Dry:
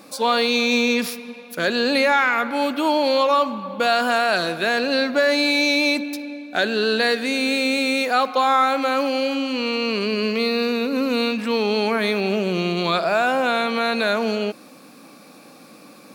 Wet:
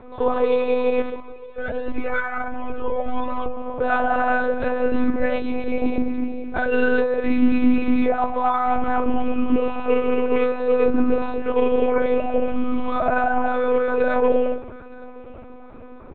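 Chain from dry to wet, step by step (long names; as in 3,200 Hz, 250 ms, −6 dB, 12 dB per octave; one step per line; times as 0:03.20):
low-pass filter 1,300 Hz 12 dB per octave
comb filter 6.6 ms, depth 91%
brickwall limiter −17 dBFS, peak gain reduction 11.5 dB
feedback echo with a high-pass in the loop 914 ms, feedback 27%, high-pass 880 Hz, level −18 dB
convolution reverb RT60 0.30 s, pre-delay 4 ms, DRR −1 dB
one-pitch LPC vocoder at 8 kHz 250 Hz
0:01.20–0:03.57: flanger whose copies keep moving one way rising 1.4 Hz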